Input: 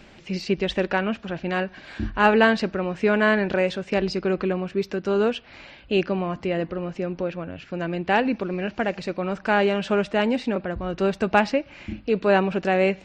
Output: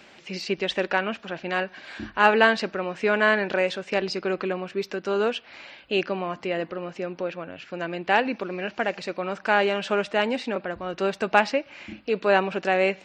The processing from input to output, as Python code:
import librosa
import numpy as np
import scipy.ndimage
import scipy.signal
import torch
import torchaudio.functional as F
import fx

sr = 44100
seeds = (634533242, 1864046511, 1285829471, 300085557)

y = fx.highpass(x, sr, hz=520.0, slope=6)
y = y * 10.0 ** (1.5 / 20.0)